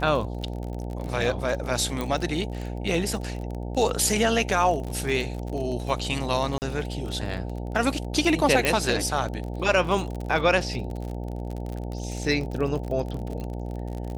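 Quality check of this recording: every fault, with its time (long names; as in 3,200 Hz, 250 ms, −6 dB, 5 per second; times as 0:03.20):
mains buzz 60 Hz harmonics 15 −32 dBFS
surface crackle 40 per second −31 dBFS
0:02.01: click −15 dBFS
0:06.58–0:06.62: drop-out 39 ms
0:08.65: click −8 dBFS
0:13.40: click −24 dBFS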